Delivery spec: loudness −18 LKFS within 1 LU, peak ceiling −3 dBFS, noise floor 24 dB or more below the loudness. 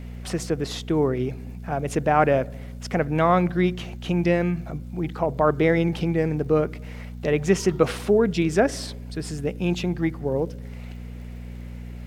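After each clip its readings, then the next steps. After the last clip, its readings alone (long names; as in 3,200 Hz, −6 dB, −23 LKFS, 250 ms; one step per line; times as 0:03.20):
crackle rate 37 per second; mains hum 60 Hz; hum harmonics up to 240 Hz; level of the hum −34 dBFS; integrated loudness −24.0 LKFS; sample peak −4.5 dBFS; target loudness −18.0 LKFS
→ click removal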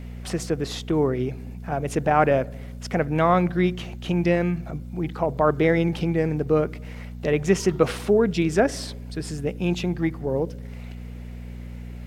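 crackle rate 0 per second; mains hum 60 Hz; hum harmonics up to 240 Hz; level of the hum −34 dBFS
→ hum removal 60 Hz, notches 4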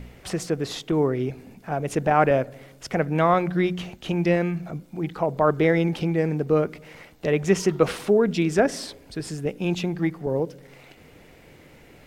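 mains hum none found; integrated loudness −24.0 LKFS; sample peak −5.0 dBFS; target loudness −18.0 LKFS
→ level +6 dB
brickwall limiter −3 dBFS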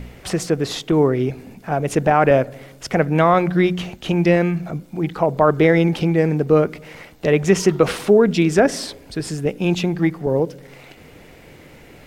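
integrated loudness −18.5 LKFS; sample peak −3.0 dBFS; background noise floor −45 dBFS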